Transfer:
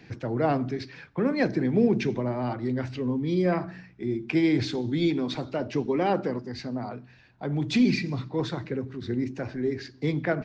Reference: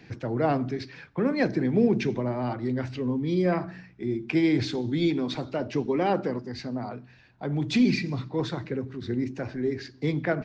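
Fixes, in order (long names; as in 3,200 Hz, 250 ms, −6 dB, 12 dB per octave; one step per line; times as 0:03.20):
no processing needed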